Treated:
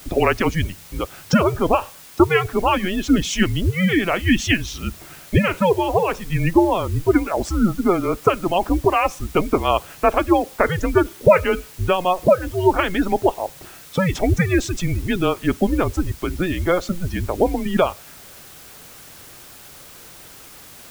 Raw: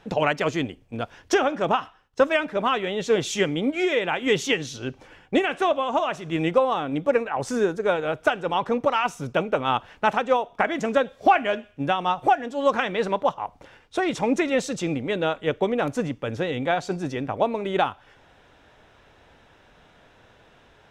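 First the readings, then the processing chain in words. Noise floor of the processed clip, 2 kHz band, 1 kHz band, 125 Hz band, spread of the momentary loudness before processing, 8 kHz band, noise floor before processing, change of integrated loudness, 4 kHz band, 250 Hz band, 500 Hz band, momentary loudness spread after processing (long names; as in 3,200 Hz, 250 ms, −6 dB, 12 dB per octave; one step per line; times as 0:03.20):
−43 dBFS, +2.5 dB, +1.5 dB, +11.5 dB, 7 LU, +5.5 dB, −56 dBFS, +4.5 dB, +2.5 dB, +7.5 dB, +3.5 dB, 22 LU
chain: gate on every frequency bin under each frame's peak −25 dB strong
frequency shifter −180 Hz
bit-depth reduction 8 bits, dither triangular
level +5 dB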